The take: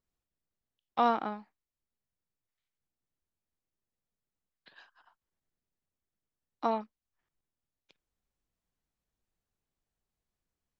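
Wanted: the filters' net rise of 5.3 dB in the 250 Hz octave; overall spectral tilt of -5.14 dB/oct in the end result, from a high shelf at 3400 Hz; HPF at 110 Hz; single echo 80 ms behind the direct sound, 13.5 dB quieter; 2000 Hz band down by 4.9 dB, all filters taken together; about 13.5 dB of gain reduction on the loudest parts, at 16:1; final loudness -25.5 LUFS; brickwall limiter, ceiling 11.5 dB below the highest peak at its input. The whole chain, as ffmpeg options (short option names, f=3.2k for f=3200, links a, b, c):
-af "highpass=110,equalizer=f=250:t=o:g=6,equalizer=f=2k:t=o:g=-9,highshelf=f=3.4k:g=4.5,acompressor=threshold=-33dB:ratio=16,alimiter=level_in=9dB:limit=-24dB:level=0:latency=1,volume=-9dB,aecho=1:1:80:0.211,volume=22dB"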